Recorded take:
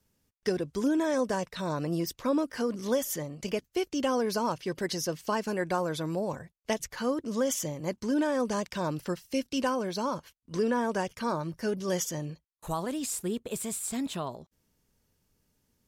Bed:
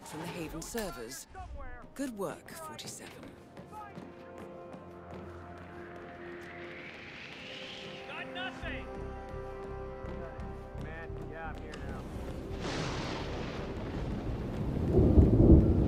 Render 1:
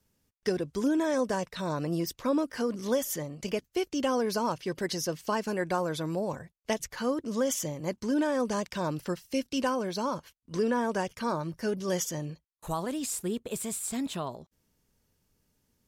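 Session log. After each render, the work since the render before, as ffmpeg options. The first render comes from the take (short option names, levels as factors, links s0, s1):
-af anull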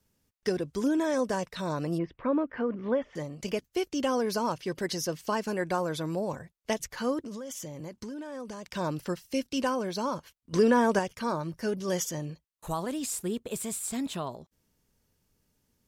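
-filter_complex "[0:a]asplit=3[s0][s1][s2];[s0]afade=t=out:st=1.97:d=0.02[s3];[s1]lowpass=f=2400:w=0.5412,lowpass=f=2400:w=1.3066,afade=t=in:st=1.97:d=0.02,afade=t=out:st=3.15:d=0.02[s4];[s2]afade=t=in:st=3.15:d=0.02[s5];[s3][s4][s5]amix=inputs=3:normalize=0,asettb=1/sr,asplit=3[s6][s7][s8];[s6]atrim=end=7.214[s9];[s7]atrim=start=7.21:end=8.76,asetpts=PTS-STARTPTS,afade=t=in:d=0.004:c=qsin,afade=t=out:st=1.546:d=0.004:c=qsin,acompressor=threshold=0.0178:ratio=16:attack=3.2:release=140:knee=1:detection=peak[s10];[s8]atrim=start=8.756[s11];[s9][s10]acrossfade=d=0.004:c1=hsin:c2=qsin[s12];[s12][s11]acrossfade=d=0.004:c1=qsin:c2=hsin,asplit=3[s13][s14][s15];[s13]atrim=end=10.532[s16];[s14]atrim=start=10.528:end=10.992,asetpts=PTS-STARTPTS,volume=1.88[s17];[s15]atrim=start=10.988[s18];[s16][s17]acrossfade=d=0.004:c1=hsin:c2=hsin[s19];[s19][s18]acrossfade=d=0.004:c1=hsin:c2=hsin"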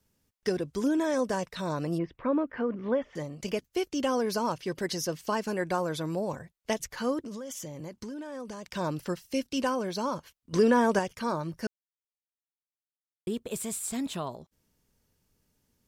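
-filter_complex "[0:a]asplit=3[s0][s1][s2];[s0]atrim=end=11.67,asetpts=PTS-STARTPTS,afade=t=out:st=11.666:d=0.004:c=hsin[s3];[s1]atrim=start=11.67:end=13.27,asetpts=PTS-STARTPTS,volume=0[s4];[s2]atrim=start=13.27,asetpts=PTS-STARTPTS,afade=t=in:d=0.004:c=hsin[s5];[s3][s4][s5]concat=n=3:v=0:a=1"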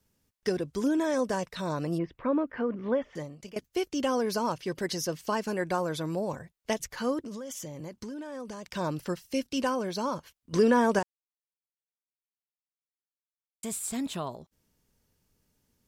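-filter_complex "[0:a]asplit=4[s0][s1][s2][s3];[s0]atrim=end=3.56,asetpts=PTS-STARTPTS,afade=t=out:st=3.12:d=0.44:silence=0.133352[s4];[s1]atrim=start=3.56:end=11.03,asetpts=PTS-STARTPTS,afade=t=in:d=0.004:c=hsin:silence=0.133352,afade=t=out:st=7.466:d=0.004:c=hsin[s5];[s2]atrim=start=11.03:end=13.63,asetpts=PTS-STARTPTS,volume=0[s6];[s3]atrim=start=13.63,asetpts=PTS-STARTPTS,afade=t=in:d=0.004:c=hsin[s7];[s4][s5][s6][s7]concat=n=4:v=0:a=1"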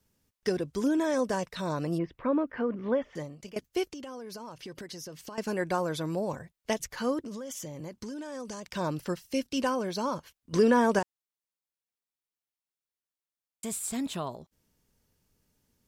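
-filter_complex "[0:a]asettb=1/sr,asplit=3[s0][s1][s2];[s0]atrim=end=3.864[s3];[s1]atrim=start=3.86:end=5.38,asetpts=PTS-STARTPTS,afade=t=in:d=0.004:c=qsin,afade=t=out:st=1.516:d=0.004:c=qsin,acompressor=threshold=0.0126:ratio=12:attack=3.2:release=140:knee=1:detection=peak[s4];[s2]atrim=start=5.376[s5];[s3][s4]acrossfade=d=0.004:c1=hsin:c2=qsin[s6];[s6][s5]acrossfade=d=0.004:c1=qsin:c2=hsin,asettb=1/sr,asplit=3[s7][s8][s9];[s7]atrim=end=8.064[s10];[s8]atrim=start=8.06:end=8.6,asetpts=PTS-STARTPTS,afade=t=in:d=0.004:c=qsin,afade=t=out:st=0.536:d=0.004:c=qsin,equalizer=f=6600:w=0.89:g=8[s11];[s9]atrim=start=8.596[s12];[s10][s11]acrossfade=d=0.004:c1=hsin:c2=qsin[s13];[s13][s12]acrossfade=d=0.004:c1=qsin:c2=hsin"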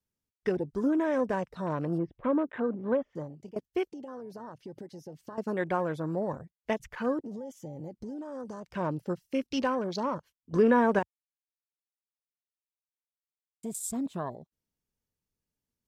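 -af "afwtdn=0.00891"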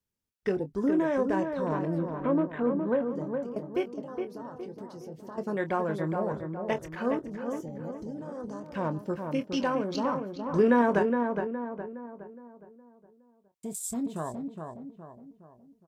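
-filter_complex "[0:a]asplit=2[s0][s1];[s1]adelay=25,volume=0.282[s2];[s0][s2]amix=inputs=2:normalize=0,asplit=2[s3][s4];[s4]adelay=415,lowpass=f=1800:p=1,volume=0.562,asplit=2[s5][s6];[s6]adelay=415,lowpass=f=1800:p=1,volume=0.46,asplit=2[s7][s8];[s8]adelay=415,lowpass=f=1800:p=1,volume=0.46,asplit=2[s9][s10];[s10]adelay=415,lowpass=f=1800:p=1,volume=0.46,asplit=2[s11][s12];[s12]adelay=415,lowpass=f=1800:p=1,volume=0.46,asplit=2[s13][s14];[s14]adelay=415,lowpass=f=1800:p=1,volume=0.46[s15];[s5][s7][s9][s11][s13][s15]amix=inputs=6:normalize=0[s16];[s3][s16]amix=inputs=2:normalize=0"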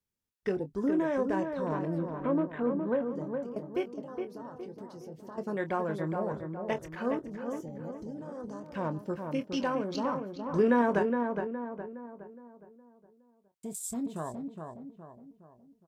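-af "volume=0.75"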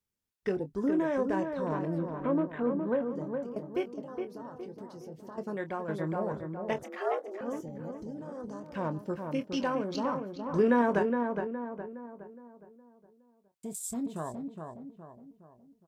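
-filter_complex "[0:a]asettb=1/sr,asplit=3[s0][s1][s2];[s0]atrim=end=6.834[s3];[s1]atrim=start=6.83:end=7.41,asetpts=PTS-STARTPTS,afade=t=in:d=0.004:c=qsin,afade=t=out:st=0.576:d=0.004:c=qsin,afreqshift=180[s4];[s2]atrim=start=7.406[s5];[s3][s4]acrossfade=d=0.004:c1=hsin:c2=qsin[s6];[s6][s5]acrossfade=d=0.004:c1=qsin:c2=hsin,asplit=2[s7][s8];[s7]atrim=end=5.88,asetpts=PTS-STARTPTS,afade=t=out:st=5.27:d=0.61:silence=0.473151[s9];[s8]atrim=start=5.88,asetpts=PTS-STARTPTS,afade=t=in:d=0.004:c=hsin:silence=0.473151[s10];[s9][s10]concat=n=2:v=0:a=1"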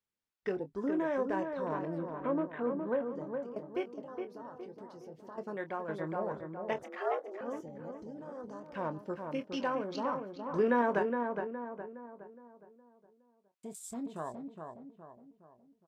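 -af "lowpass=f=3000:p=1,lowshelf=f=270:g=-10.5"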